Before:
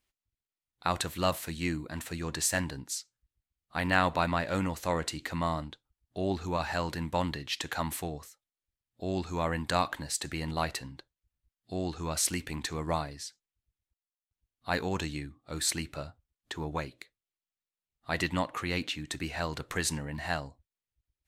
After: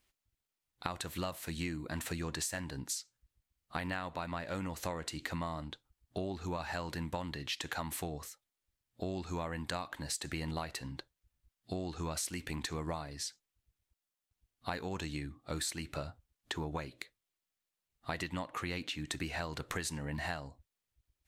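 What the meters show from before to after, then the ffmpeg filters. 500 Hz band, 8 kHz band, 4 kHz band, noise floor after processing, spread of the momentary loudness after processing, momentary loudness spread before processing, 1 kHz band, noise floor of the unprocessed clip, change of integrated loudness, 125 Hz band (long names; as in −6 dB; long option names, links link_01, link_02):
−7.5 dB, −6.5 dB, −5.5 dB, below −85 dBFS, 6 LU, 11 LU, −8.5 dB, below −85 dBFS, −7.0 dB, −5.0 dB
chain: -af "acompressor=threshold=-39dB:ratio=12,volume=4.5dB"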